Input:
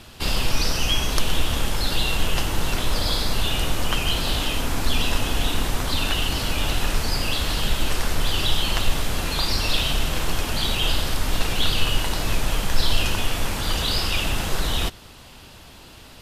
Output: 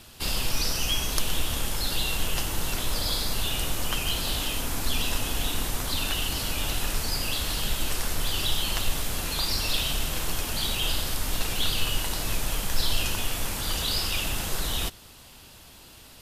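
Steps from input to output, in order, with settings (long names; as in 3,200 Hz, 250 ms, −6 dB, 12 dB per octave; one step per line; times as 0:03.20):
high-shelf EQ 6,300 Hz +11 dB
level −6.5 dB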